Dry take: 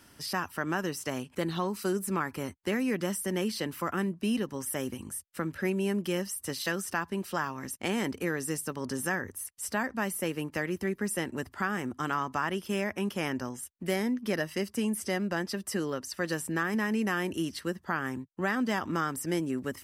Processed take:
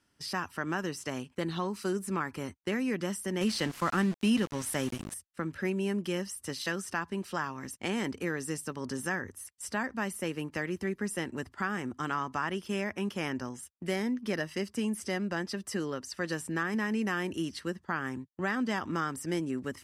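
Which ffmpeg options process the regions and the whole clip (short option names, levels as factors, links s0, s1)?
-filter_complex "[0:a]asettb=1/sr,asplit=3[s0][s1][s2];[s0]atrim=end=3.414[s3];[s1]atrim=start=3.41:end=5.14,asetpts=PTS-STARTPTS,afade=t=in:d=0.004:c=qsin,afade=t=out:st=1.726:d=0.004:c=qsin,equalizer=f=400:t=o:w=0.78:g=-4,acontrast=35,aeval=exprs='val(0)*gte(abs(val(0)),0.0168)':c=same[s4];[s2]atrim=start=5.136[s5];[s3][s4]acrossfade=d=0.004:c1=hsin:c2=qsin[s6];[s6][s5]acrossfade=d=0.004:c1=qsin:c2=hsin,agate=range=0.2:threshold=0.00562:ratio=16:detection=peak,lowpass=9100,equalizer=f=620:t=o:w=0.77:g=-2,volume=0.841"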